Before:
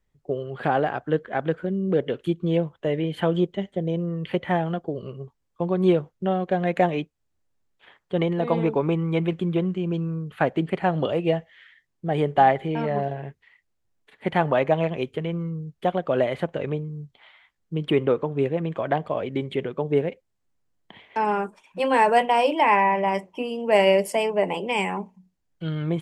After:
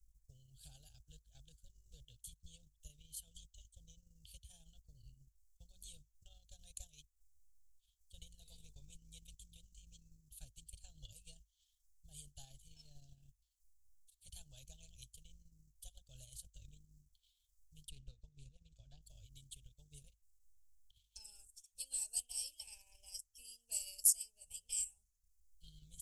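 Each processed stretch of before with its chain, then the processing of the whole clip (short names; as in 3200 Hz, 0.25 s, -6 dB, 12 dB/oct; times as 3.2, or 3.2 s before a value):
17.89–19.02 air absorption 90 m + notch 3200 Hz + Doppler distortion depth 0.14 ms
whole clip: inverse Chebyshev band-stop 180–2100 Hz, stop band 60 dB; transient shaper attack +3 dB, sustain -7 dB; gain +7.5 dB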